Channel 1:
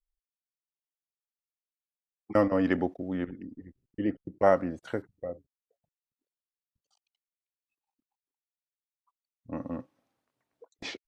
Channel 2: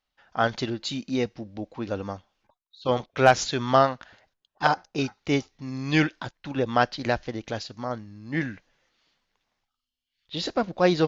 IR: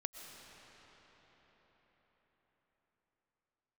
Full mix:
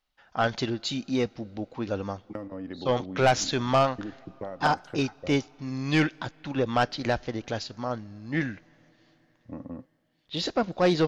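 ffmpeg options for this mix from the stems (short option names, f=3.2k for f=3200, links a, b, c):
-filter_complex "[0:a]lowshelf=f=440:g=8,acompressor=threshold=-27dB:ratio=12,volume=-6.5dB[a];[1:a]asoftclip=type=tanh:threshold=-14.5dB,volume=0dB,asplit=2[b][c];[c]volume=-21.5dB[d];[2:a]atrim=start_sample=2205[e];[d][e]afir=irnorm=-1:irlink=0[f];[a][b][f]amix=inputs=3:normalize=0"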